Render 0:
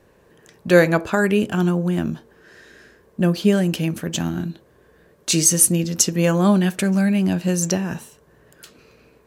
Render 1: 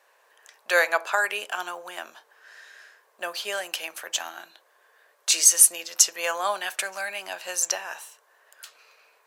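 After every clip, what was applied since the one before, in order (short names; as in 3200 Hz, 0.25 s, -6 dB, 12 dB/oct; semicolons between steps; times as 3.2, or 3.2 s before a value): HPF 700 Hz 24 dB/oct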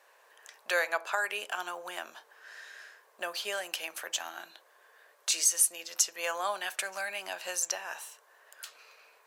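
compressor 1.5:1, threshold -39 dBFS, peak gain reduction 10.5 dB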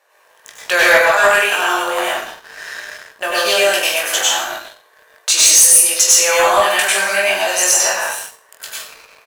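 on a send: reverse bouncing-ball echo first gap 20 ms, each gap 1.25×, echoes 5; on the sum: plate-style reverb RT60 0.55 s, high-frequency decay 0.9×, pre-delay 85 ms, DRR -5.5 dB; sample leveller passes 2; gain +5 dB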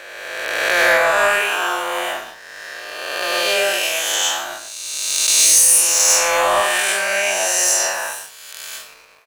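spectral swells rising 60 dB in 1.96 s; gain -7 dB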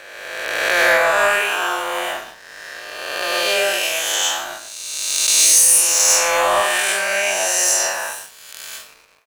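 G.711 law mismatch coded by A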